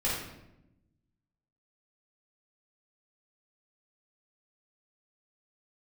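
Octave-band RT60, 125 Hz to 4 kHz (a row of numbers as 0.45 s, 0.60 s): 1.5 s, 1.4 s, 1.0 s, 0.80 s, 0.75 s, 0.60 s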